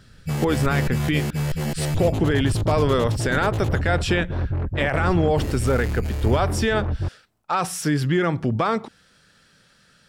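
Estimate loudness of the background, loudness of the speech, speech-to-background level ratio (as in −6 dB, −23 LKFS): −26.0 LKFS, −23.5 LKFS, 2.5 dB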